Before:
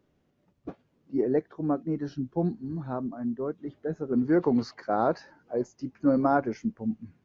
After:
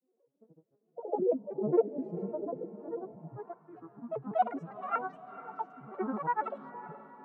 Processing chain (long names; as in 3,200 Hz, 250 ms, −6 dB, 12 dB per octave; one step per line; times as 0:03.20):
vocoder with an arpeggio as carrier bare fifth, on B3, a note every 84 ms
echo ahead of the sound 179 ms −12 dB
granular cloud, pitch spread up and down by 12 semitones
on a send: feedback delay with all-pass diffusion 479 ms, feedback 53%, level −14 dB
on the sum: band-pass filter sweep 500 Hz → 1,200 Hz, 0:02.93–0:03.62
level +5 dB